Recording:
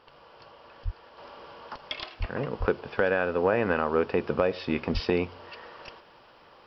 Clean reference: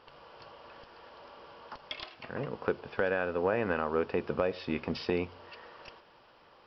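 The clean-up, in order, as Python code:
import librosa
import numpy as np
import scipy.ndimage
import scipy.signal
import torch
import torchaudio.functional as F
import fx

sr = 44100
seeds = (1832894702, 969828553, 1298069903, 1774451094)

y = fx.fix_deplosive(x, sr, at_s=(0.84, 2.19, 2.59, 4.93))
y = fx.fix_level(y, sr, at_s=1.18, step_db=-5.0)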